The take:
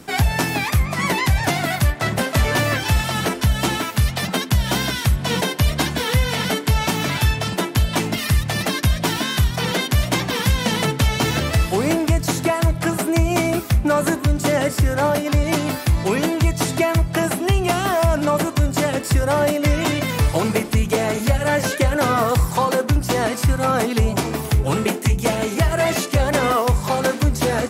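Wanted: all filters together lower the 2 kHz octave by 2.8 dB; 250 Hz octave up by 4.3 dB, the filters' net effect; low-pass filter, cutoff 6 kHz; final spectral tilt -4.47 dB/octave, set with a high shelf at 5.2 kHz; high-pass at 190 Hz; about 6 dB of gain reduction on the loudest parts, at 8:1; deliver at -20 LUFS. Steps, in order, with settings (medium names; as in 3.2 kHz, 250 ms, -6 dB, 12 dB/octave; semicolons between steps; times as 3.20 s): high-pass 190 Hz; low-pass 6 kHz; peaking EQ 250 Hz +7.5 dB; peaking EQ 2 kHz -3 dB; treble shelf 5.2 kHz -3.5 dB; compression 8:1, threshold -19 dBFS; trim +4 dB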